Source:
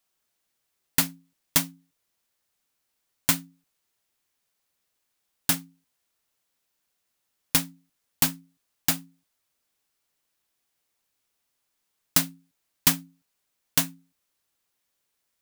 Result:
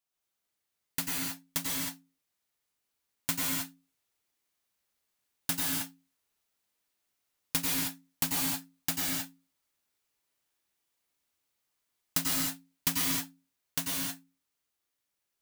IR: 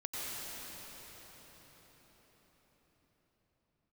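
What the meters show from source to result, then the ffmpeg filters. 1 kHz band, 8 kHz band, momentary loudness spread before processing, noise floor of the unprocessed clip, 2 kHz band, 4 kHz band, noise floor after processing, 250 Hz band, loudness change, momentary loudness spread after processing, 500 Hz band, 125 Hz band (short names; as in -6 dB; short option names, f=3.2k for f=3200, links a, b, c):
-4.0 dB, -4.5 dB, 9 LU, -78 dBFS, -4.0 dB, -4.0 dB, -84 dBFS, -3.5 dB, -6.0 dB, 9 LU, -4.0 dB, -6.0 dB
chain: -filter_complex "[0:a]dynaudnorm=f=560:g=11:m=11.5dB[a];[1:a]atrim=start_sample=2205,afade=t=out:st=0.37:d=0.01,atrim=end_sample=16758[b];[a][b]afir=irnorm=-1:irlink=0,volume=-7dB"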